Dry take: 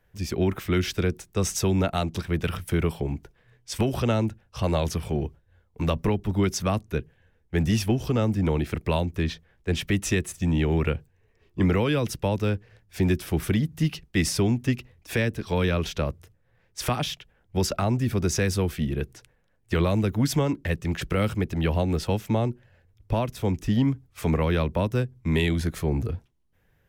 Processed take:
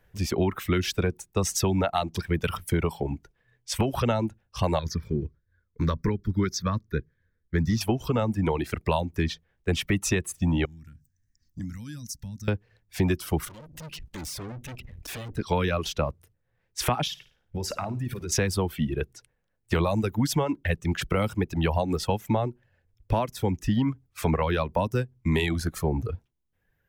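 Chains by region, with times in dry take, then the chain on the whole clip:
0:04.79–0:07.81: high-shelf EQ 10,000 Hz −9 dB + phaser with its sweep stopped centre 2,800 Hz, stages 6
0:10.65–0:12.48: drawn EQ curve 280 Hz 0 dB, 410 Hz −29 dB, 1,100 Hz −18 dB, 1,700 Hz −5 dB, 2,700 Hz −18 dB, 5,900 Hz +12 dB, 10,000 Hz +5 dB + downward compressor 3 to 1, threshold −39 dBFS
0:13.45–0:15.38: low-shelf EQ 160 Hz +8.5 dB + upward compression, threshold −21 dBFS + tube saturation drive 37 dB, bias 0.7
0:17.07–0:18.32: downward compressor 8 to 1, threshold −30 dBFS + flutter between parallel walls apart 9.4 metres, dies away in 0.41 s
whole clip: reverb reduction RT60 1.8 s; dynamic equaliser 900 Hz, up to +6 dB, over −44 dBFS, Q 1.7; downward compressor 3 to 1, threshold −24 dBFS; level +3 dB

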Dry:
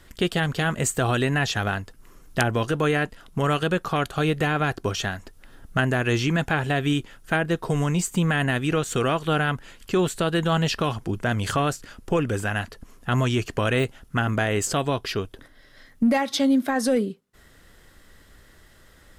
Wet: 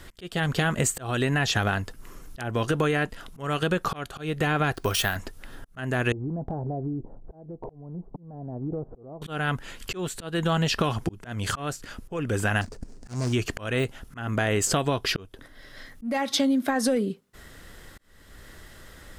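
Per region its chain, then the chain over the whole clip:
0:04.74–0:05.16: parametric band 210 Hz −7 dB 2.6 octaves + bad sample-rate conversion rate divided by 3×, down none, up hold
0:06.12–0:09.22: Butterworth low-pass 820 Hz + downward compressor 10 to 1, threshold −33 dBFS + hard clipping −28 dBFS
0:12.61–0:13.33: running median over 41 samples + flat-topped bell 6,500 Hz +15 dB 1.3 octaves
whole clip: volume swells 500 ms; downward compressor 10 to 1, threshold −26 dBFS; level +6 dB

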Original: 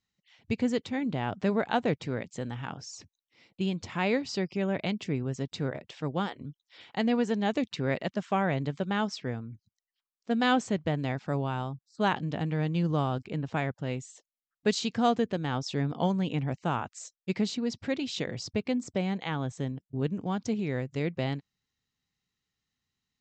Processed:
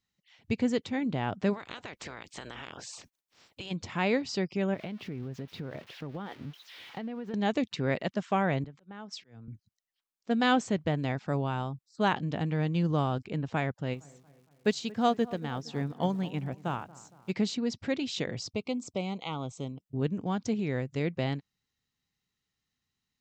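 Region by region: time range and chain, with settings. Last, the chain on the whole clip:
0:01.53–0:03.70: ceiling on every frequency bin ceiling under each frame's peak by 24 dB + downward compressor 10 to 1, threshold −37 dBFS
0:04.74–0:07.34: spike at every zero crossing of −28.5 dBFS + high-frequency loss of the air 320 metres + downward compressor 10 to 1, threshold −33 dBFS
0:08.64–0:09.48: downward compressor, threshold −41 dBFS + volume swells 109 ms + multiband upward and downward expander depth 100%
0:13.93–0:17.31: surface crackle 360 per second −48 dBFS + delay with a low-pass on its return 231 ms, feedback 54%, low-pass 1,600 Hz, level −14 dB + expander for the loud parts, over −41 dBFS
0:18.47–0:19.82: Butterworth band-reject 1,700 Hz, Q 1.9 + low-shelf EQ 400 Hz −6 dB
whole clip: no processing

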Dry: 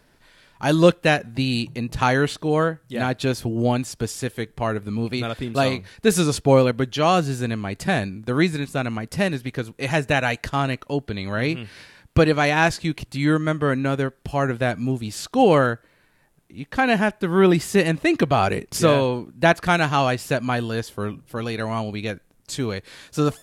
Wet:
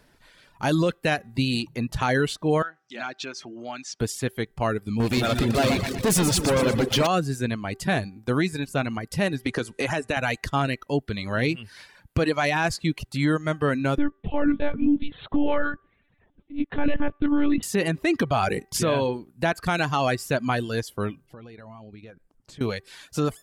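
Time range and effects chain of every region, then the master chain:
0:02.62–0:04.00: downward compressor 2 to 1, threshold −32 dBFS + loudspeaker in its box 360–6,700 Hz, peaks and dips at 480 Hz −9 dB, 1,400 Hz +5 dB, 2,400 Hz +4 dB, 5,900 Hz +6 dB
0:05.00–0:07.07: leveller curve on the samples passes 5 + downward compressor 10 to 1, threshold −19 dBFS + echo with a time of its own for lows and highs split 480 Hz, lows 175 ms, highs 120 ms, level −5.5 dB
0:09.46–0:10.17: parametric band 140 Hz −13 dB 0.27 octaves + bad sample-rate conversion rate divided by 2×, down none, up filtered + multiband upward and downward compressor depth 100%
0:13.98–0:17.63: parametric band 250 Hz +11.5 dB 1.2 octaves + one-pitch LPC vocoder at 8 kHz 290 Hz
0:21.26–0:22.61: low-pass filter 3,700 Hz 6 dB per octave + downward compressor 12 to 1, threshold −38 dBFS + high-shelf EQ 2,100 Hz −7 dB
whole clip: hum removal 388.4 Hz, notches 5; reverb reduction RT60 0.65 s; brickwall limiter −13 dBFS

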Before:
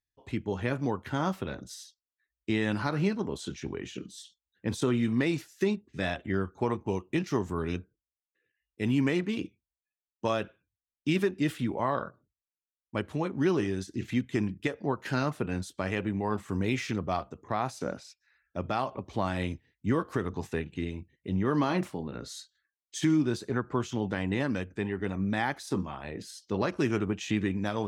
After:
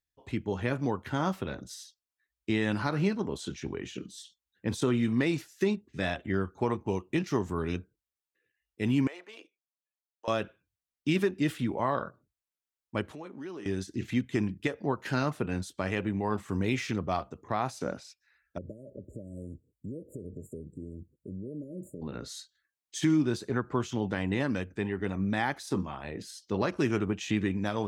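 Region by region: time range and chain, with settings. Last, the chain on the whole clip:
0:09.07–0:10.28: four-pole ladder high-pass 510 Hz, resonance 40% + downward compressor 2 to 1, threshold −43 dBFS
0:13.11–0:13.66: high-pass filter 230 Hz + downward compressor 2.5 to 1, threshold −44 dBFS
0:18.58–0:22.02: downward compressor 4 to 1, threshold −37 dBFS + linear-phase brick-wall band-stop 630–6,800 Hz
whole clip: no processing

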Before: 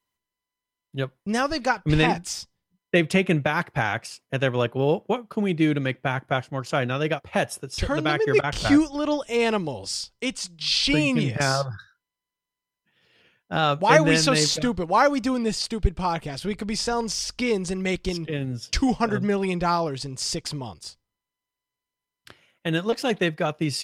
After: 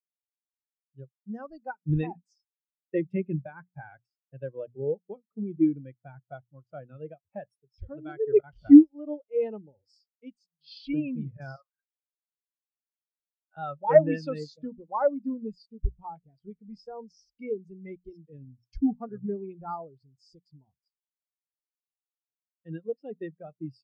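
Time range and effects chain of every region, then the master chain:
0:11.56–0:13.57: high-pass filter 1,000 Hz + de-essing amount 35%
whole clip: mains-hum notches 60/120/180/240 Hz; every bin expanded away from the loudest bin 2.5 to 1

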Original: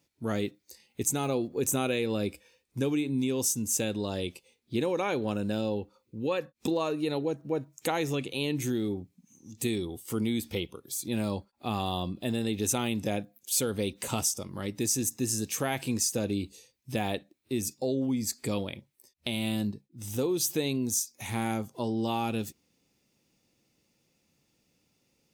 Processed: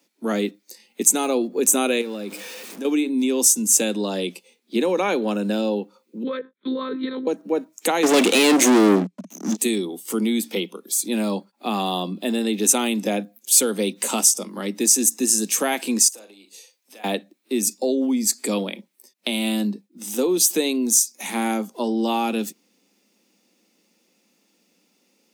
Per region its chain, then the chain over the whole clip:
0:02.01–0:02.85: converter with a step at zero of −39.5 dBFS + downward compressor 4 to 1, threshold −35 dBFS
0:06.23–0:07.27: one-pitch LPC vocoder at 8 kHz 260 Hz + phaser with its sweep stopped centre 2,700 Hz, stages 6
0:08.03–0:09.57: Bessel low-pass filter 6,700 Hz + leveller curve on the samples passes 5
0:16.08–0:17.04: downward compressor, threshold −44 dBFS + high-pass filter 550 Hz + double-tracking delay 41 ms −9 dB
whole clip: Butterworth high-pass 180 Hz 96 dB per octave; dynamic equaliser 8,600 Hz, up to +6 dB, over −45 dBFS, Q 1.1; level +8 dB

